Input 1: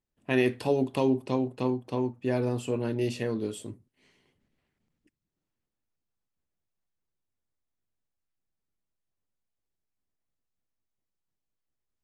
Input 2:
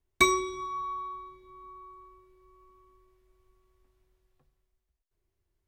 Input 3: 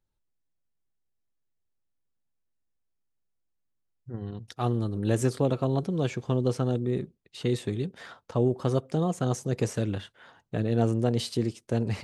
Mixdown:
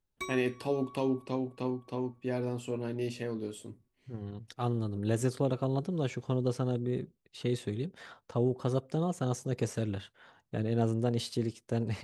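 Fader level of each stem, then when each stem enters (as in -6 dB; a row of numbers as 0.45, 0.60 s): -5.5, -17.5, -4.5 dB; 0.00, 0.00, 0.00 s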